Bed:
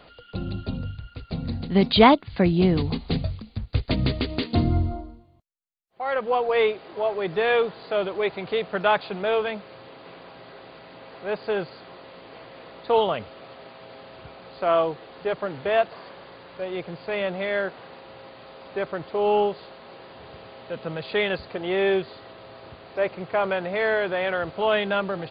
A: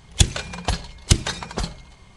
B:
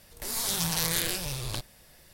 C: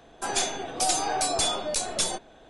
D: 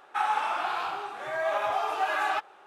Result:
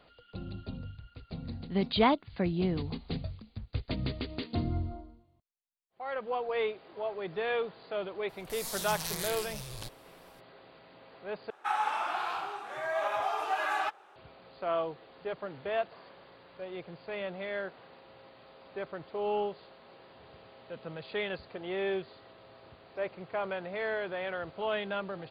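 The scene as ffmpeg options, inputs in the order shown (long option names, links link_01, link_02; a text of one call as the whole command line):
ffmpeg -i bed.wav -i cue0.wav -i cue1.wav -i cue2.wav -i cue3.wav -filter_complex "[0:a]volume=-10.5dB,asplit=2[link_01][link_02];[link_01]atrim=end=11.504[link_03];[4:a]atrim=end=2.66,asetpts=PTS-STARTPTS,volume=-3.5dB[link_04];[link_02]atrim=start=14.156[link_05];[2:a]atrim=end=2.13,asetpts=PTS-STARTPTS,volume=-8.5dB,afade=type=in:duration=0.02,afade=type=out:start_time=2.11:duration=0.02,adelay=8280[link_06];[link_03][link_04]acrossfade=duration=0.004:curve1=hsin:curve2=hsin[link_07];[link_07][link_05]acrossfade=duration=0.004:curve1=hsin:curve2=hsin[link_08];[link_08][link_06]amix=inputs=2:normalize=0" out.wav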